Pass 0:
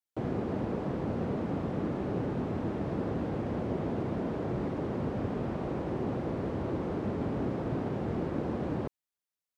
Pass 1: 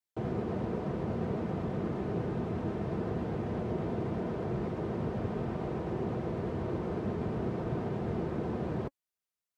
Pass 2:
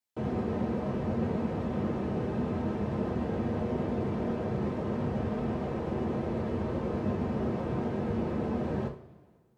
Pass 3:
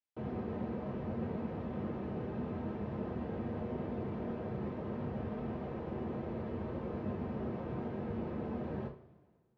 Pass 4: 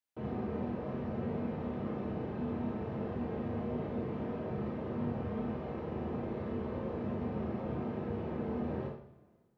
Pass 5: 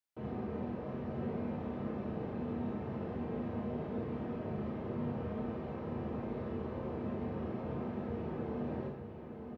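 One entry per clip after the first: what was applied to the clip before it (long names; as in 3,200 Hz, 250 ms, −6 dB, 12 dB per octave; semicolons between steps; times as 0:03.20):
notch comb filter 280 Hz; pitch vibrato 8.2 Hz 39 cents
coupled-rooms reverb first 0.36 s, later 1.8 s, from −18 dB, DRR 0.5 dB
low-pass filter 3,600 Hz 12 dB per octave; level −7.5 dB
four-comb reverb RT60 0.4 s, combs from 26 ms, DRR 3 dB
single-tap delay 910 ms −7.5 dB; level −2.5 dB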